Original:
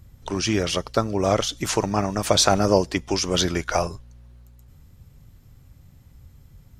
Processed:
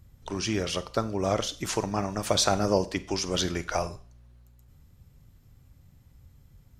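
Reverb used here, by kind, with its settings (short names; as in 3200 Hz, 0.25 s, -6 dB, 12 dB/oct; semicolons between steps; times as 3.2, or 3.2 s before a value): Schroeder reverb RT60 0.41 s, combs from 32 ms, DRR 14.5 dB; gain -6 dB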